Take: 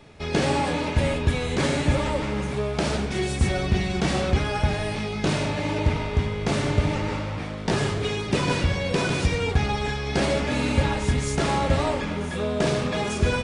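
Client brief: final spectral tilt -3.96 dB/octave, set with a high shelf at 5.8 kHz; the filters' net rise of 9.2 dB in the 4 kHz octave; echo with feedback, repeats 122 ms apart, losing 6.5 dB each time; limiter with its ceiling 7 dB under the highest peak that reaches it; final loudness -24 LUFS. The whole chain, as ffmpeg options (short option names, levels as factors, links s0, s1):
-af "equalizer=f=4000:t=o:g=9,highshelf=f=5800:g=7,alimiter=limit=0.2:level=0:latency=1,aecho=1:1:122|244|366|488|610|732:0.473|0.222|0.105|0.0491|0.0231|0.0109,volume=0.891"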